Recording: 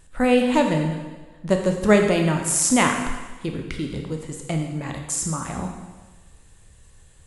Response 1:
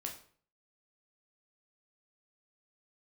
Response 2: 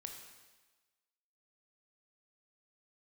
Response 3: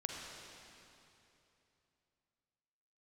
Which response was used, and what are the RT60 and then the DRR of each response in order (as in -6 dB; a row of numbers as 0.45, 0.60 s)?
2; 0.50, 1.3, 3.0 s; 1.0, 3.0, -0.5 dB